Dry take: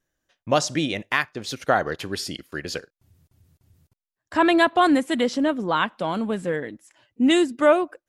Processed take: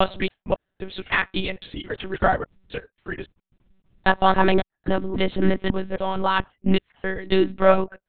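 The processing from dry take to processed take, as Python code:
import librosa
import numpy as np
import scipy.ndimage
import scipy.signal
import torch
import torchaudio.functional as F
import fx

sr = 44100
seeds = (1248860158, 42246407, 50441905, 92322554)

y = fx.block_reorder(x, sr, ms=271.0, group=3)
y = fx.lpc_monotone(y, sr, seeds[0], pitch_hz=190.0, order=10)
y = y * 10.0 ** (1.0 / 20.0)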